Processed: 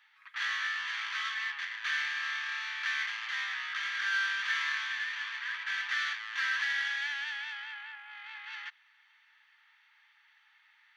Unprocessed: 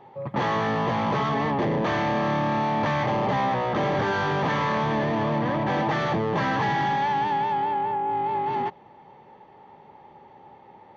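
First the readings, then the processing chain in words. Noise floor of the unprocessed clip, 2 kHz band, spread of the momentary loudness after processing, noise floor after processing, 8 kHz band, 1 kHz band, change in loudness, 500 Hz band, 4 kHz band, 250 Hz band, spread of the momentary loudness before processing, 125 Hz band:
-51 dBFS, +1.0 dB, 13 LU, -66 dBFS, n/a, -20.5 dB, -8.0 dB, under -40 dB, +1.0 dB, under -40 dB, 2 LU, under -40 dB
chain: elliptic high-pass 1500 Hz, stop band 60 dB; in parallel at -11 dB: soft clip -36 dBFS, distortion -9 dB

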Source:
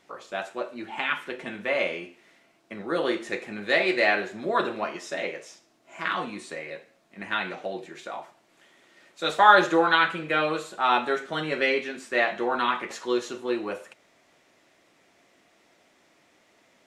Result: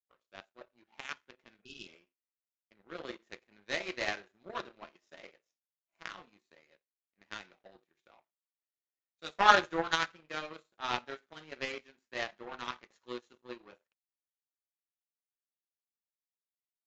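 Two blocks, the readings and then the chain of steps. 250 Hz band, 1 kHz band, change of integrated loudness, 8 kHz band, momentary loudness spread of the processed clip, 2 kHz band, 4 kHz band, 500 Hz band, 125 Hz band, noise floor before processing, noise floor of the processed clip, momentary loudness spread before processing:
-15.5 dB, -10.0 dB, -8.5 dB, -5.5 dB, 21 LU, -11.0 dB, -7.5 dB, -14.5 dB, -11.5 dB, -63 dBFS, under -85 dBFS, 17 LU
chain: power-law curve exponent 2; elliptic low-pass 7000 Hz, stop band 40 dB; spectral repair 1.65–1.9, 430–2500 Hz both

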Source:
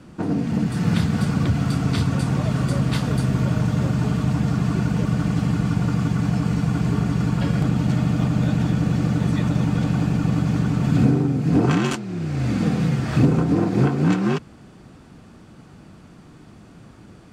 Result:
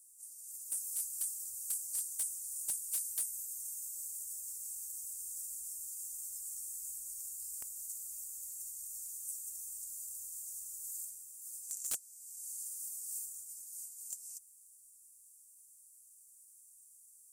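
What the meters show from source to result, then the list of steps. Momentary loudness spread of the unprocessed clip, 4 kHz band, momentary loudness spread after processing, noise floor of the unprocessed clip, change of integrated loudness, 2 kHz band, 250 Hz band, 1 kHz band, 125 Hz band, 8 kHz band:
3 LU, -21.0 dB, 22 LU, -46 dBFS, -18.5 dB, under -30 dB, under -40 dB, under -40 dB, under -40 dB, +5.0 dB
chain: inverse Chebyshev band-stop 110–3700 Hz, stop band 50 dB; differentiator; wavefolder -39.5 dBFS; gain +11.5 dB

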